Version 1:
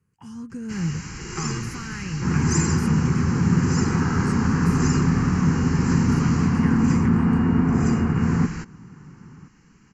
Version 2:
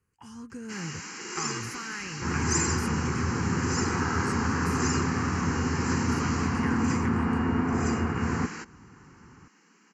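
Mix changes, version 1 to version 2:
first sound: add brick-wall FIR high-pass 160 Hz; master: add peaking EQ 160 Hz -12.5 dB 1.3 oct

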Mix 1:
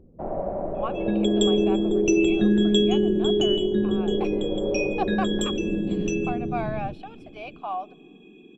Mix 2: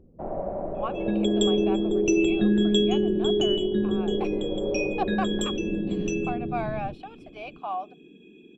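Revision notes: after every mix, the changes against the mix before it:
reverb: off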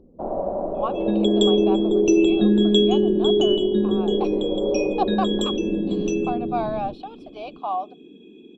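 master: add ten-band graphic EQ 125 Hz -5 dB, 250 Hz +6 dB, 500 Hz +4 dB, 1 kHz +7 dB, 2 kHz -11 dB, 4 kHz +11 dB, 8 kHz -4 dB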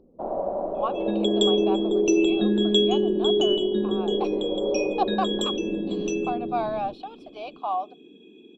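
master: add bass shelf 280 Hz -9 dB

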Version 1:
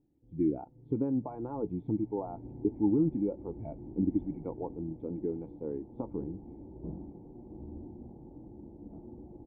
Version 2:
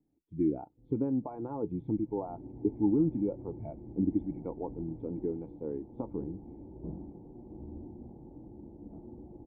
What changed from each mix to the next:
first sound: entry +0.55 s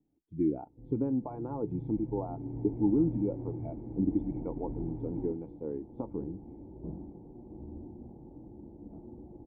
first sound +11.0 dB

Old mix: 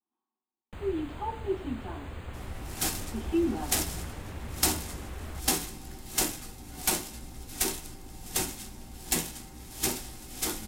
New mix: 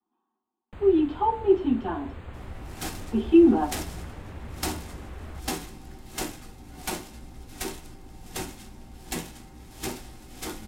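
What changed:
speech +11.5 dB; master: add treble shelf 4.3 kHz -10.5 dB

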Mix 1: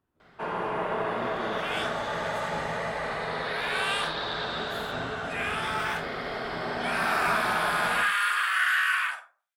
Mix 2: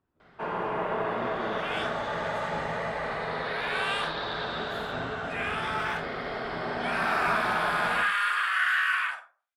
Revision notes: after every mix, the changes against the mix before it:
master: add low-pass 3.7 kHz 6 dB/octave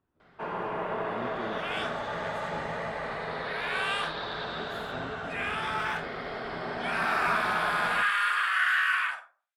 first sound: send -7.5 dB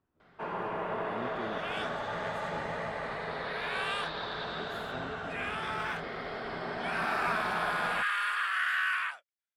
reverb: off

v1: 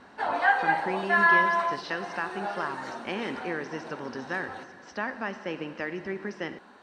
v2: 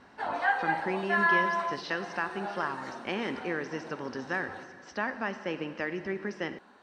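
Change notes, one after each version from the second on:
background -4.5 dB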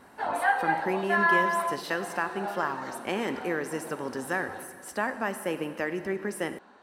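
speech: remove elliptic low-pass 5.7 kHz, stop band 50 dB; master: add peaking EQ 630 Hz +3.5 dB 2.1 oct

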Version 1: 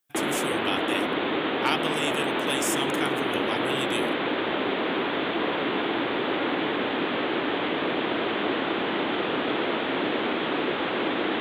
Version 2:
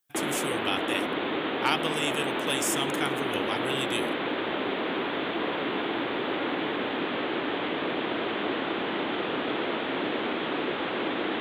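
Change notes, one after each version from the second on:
background -3.0 dB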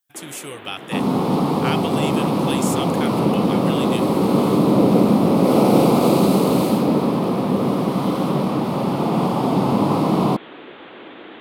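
first sound -9.5 dB; second sound: unmuted; reverb: on, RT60 2.4 s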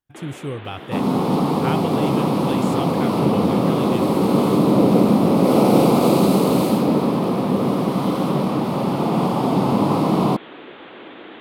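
speech: add tilt EQ -4.5 dB/octave

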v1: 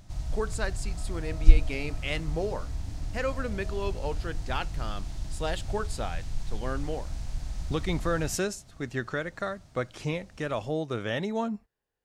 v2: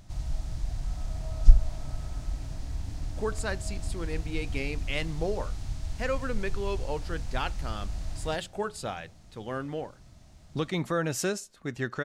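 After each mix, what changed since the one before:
speech: entry +2.85 s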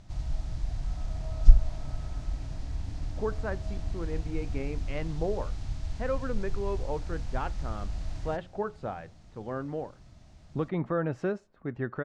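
speech: add low-pass 1.3 kHz 12 dB/octave; background: add distance through air 62 m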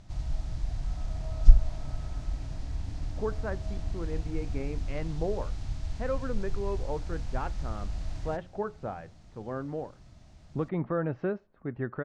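speech: add distance through air 270 m

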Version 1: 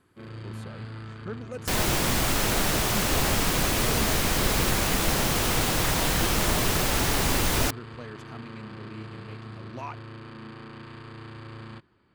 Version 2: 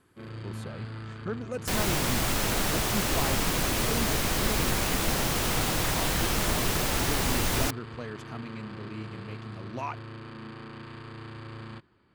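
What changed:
speech +3.0 dB; reverb: off

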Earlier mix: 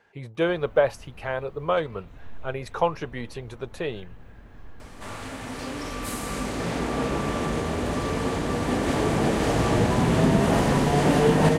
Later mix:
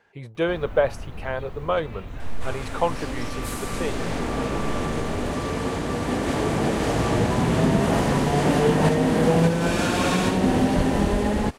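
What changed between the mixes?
first sound +11.0 dB; second sound: entry -2.60 s

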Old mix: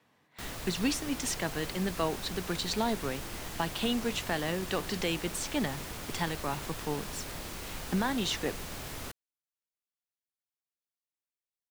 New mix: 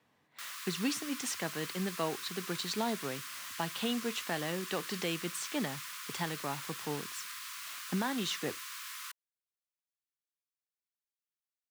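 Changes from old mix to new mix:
speech -3.5 dB; background: add brick-wall FIR high-pass 980 Hz

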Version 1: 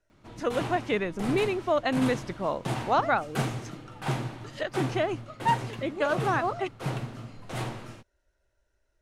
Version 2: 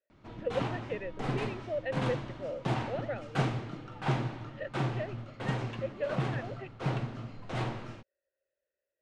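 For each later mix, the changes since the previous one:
speech: add vowel filter e; master: add distance through air 110 m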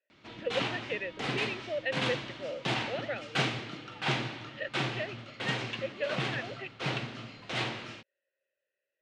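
master: add frequency weighting D

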